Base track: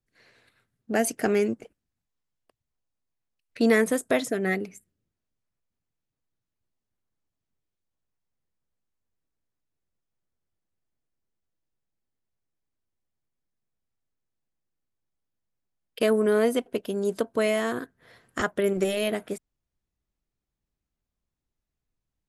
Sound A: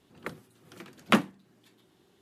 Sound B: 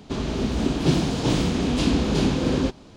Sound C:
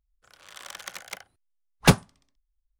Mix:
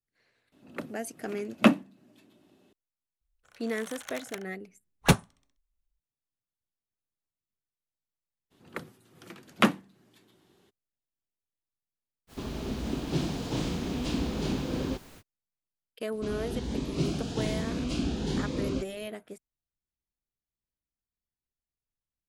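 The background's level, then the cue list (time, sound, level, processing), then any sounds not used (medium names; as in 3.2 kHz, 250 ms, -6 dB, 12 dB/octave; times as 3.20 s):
base track -12 dB
0.52 s: add A -3 dB + small resonant body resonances 260/600/2600 Hz, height 11 dB, ringing for 30 ms
3.21 s: add C -4 dB + band-stop 4.9 kHz, Q 6.7
8.50 s: add A, fades 0.02 s
12.27 s: add B -9.5 dB, fades 0.05 s + added noise pink -43 dBFS
16.12 s: add B -9 dB + Shepard-style phaser rising 1.2 Hz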